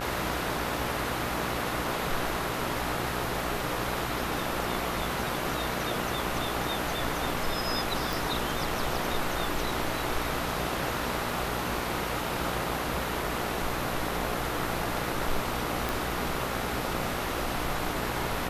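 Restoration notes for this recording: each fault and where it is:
buzz 60 Hz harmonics 24 -36 dBFS
8.13 pop
15.89 pop

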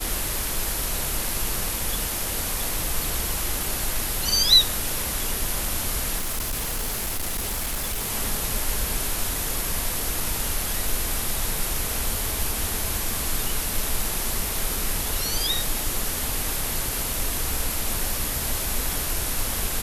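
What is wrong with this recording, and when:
crackle 10/s -29 dBFS
6.18–8.1 clipped -23.5 dBFS

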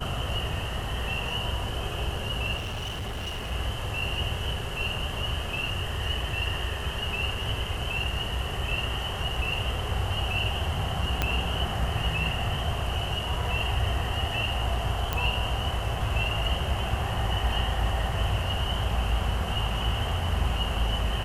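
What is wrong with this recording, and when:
2.56–3.52 clipped -29.5 dBFS
11.22 pop -9 dBFS
15.13 pop -12 dBFS

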